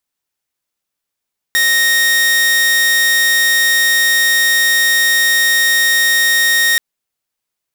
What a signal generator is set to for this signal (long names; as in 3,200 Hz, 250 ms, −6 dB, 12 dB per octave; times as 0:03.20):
tone saw 1,860 Hz −7.5 dBFS 5.23 s